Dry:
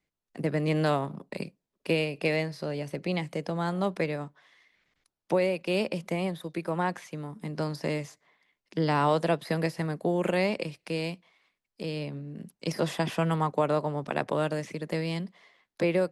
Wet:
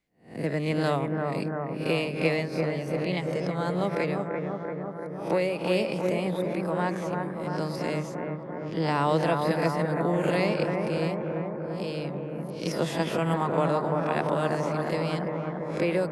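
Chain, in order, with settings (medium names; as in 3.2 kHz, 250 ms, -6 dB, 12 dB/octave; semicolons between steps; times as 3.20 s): reverse spectral sustain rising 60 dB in 0.37 s; 10.62–11.10 s: tilt shelf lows +3.5 dB; bucket-brigade echo 341 ms, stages 4096, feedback 75%, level -4 dB; trim -1 dB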